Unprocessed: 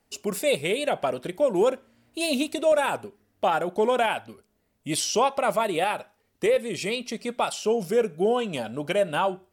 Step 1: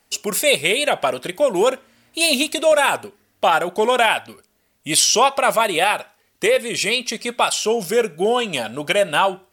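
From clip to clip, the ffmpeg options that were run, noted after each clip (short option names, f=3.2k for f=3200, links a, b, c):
-af "tiltshelf=f=840:g=-5.5,volume=7dB"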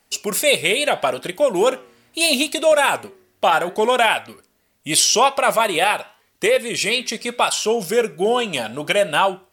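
-af "flanger=delay=5.2:depth=4.4:regen=-89:speed=0.76:shape=sinusoidal,volume=4.5dB"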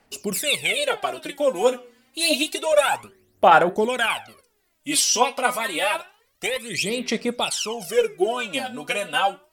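-af "aphaser=in_gain=1:out_gain=1:delay=4.1:decay=0.76:speed=0.28:type=sinusoidal,volume=-7.5dB"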